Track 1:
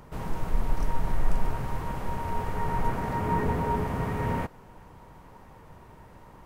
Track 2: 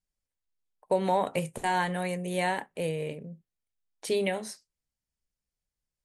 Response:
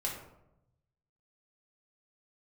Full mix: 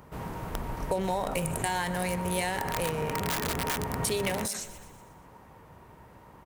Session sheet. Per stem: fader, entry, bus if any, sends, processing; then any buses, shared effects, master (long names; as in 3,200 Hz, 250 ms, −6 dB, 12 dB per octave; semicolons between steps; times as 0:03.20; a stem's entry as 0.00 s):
−1.0 dB, 0.00 s, no send, no echo send, high-pass filter 50 Hz 12 dB per octave; bass and treble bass −1 dB, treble −4 dB; wrap-around overflow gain 21 dB
+2.0 dB, 0.00 s, no send, echo send −18 dB, adaptive Wiener filter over 9 samples; high-shelf EQ 3,100 Hz +10.5 dB; level that may fall only so fast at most 54 dB per second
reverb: not used
echo: repeating echo 122 ms, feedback 52%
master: high-shelf EQ 8,900 Hz +8.5 dB; downward compressor, threshold −26 dBFS, peak gain reduction 8.5 dB